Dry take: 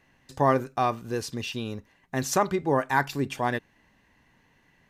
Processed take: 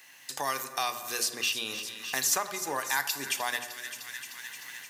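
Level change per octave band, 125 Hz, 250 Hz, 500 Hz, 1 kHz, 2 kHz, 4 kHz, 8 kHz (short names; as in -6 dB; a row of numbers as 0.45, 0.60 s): -21.5, -15.5, -12.0, -7.0, +0.5, +7.5, +7.5 dB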